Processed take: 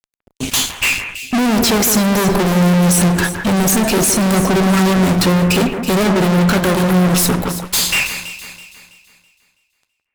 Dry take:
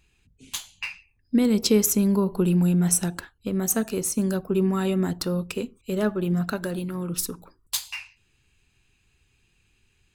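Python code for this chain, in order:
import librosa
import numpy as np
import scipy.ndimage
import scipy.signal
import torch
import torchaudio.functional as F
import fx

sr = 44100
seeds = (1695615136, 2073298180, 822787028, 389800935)

y = fx.fuzz(x, sr, gain_db=45.0, gate_db=-54.0)
y = fx.echo_alternate(y, sr, ms=164, hz=2500.0, feedback_pct=61, wet_db=-7.5)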